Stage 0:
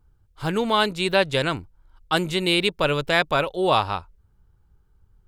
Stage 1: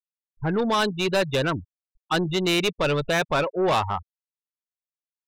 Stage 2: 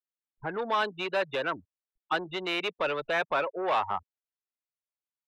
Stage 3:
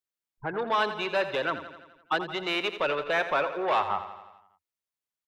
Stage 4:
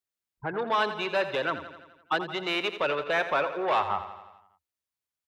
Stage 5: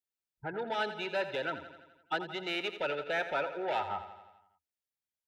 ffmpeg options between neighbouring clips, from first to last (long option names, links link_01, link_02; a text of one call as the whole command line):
ffmpeg -i in.wav -af "afftfilt=real='re*gte(hypot(re,im),0.0794)':imag='im*gte(hypot(re,im),0.0794)':win_size=1024:overlap=0.75,asoftclip=type=tanh:threshold=-20dB,volume=3dB" out.wav
ffmpeg -i in.wav -filter_complex "[0:a]acrossover=split=210 3300:gain=0.178 1 0.112[link_01][link_02][link_03];[link_01][link_02][link_03]amix=inputs=3:normalize=0,acrossover=split=500|920[link_04][link_05][link_06];[link_04]acompressor=threshold=-37dB:ratio=6[link_07];[link_07][link_05][link_06]amix=inputs=3:normalize=0,volume=-3dB" out.wav
ffmpeg -i in.wav -af "aecho=1:1:85|170|255|340|425|510|595:0.266|0.16|0.0958|0.0575|0.0345|0.0207|0.0124,volume=1.5dB" out.wav
ffmpeg -i in.wav -af "highpass=50,equalizer=frequency=66:width=1.8:gain=10.5" out.wav
ffmpeg -i in.wav -af "asuperstop=centerf=1100:order=20:qfactor=4.5,volume=-6dB" out.wav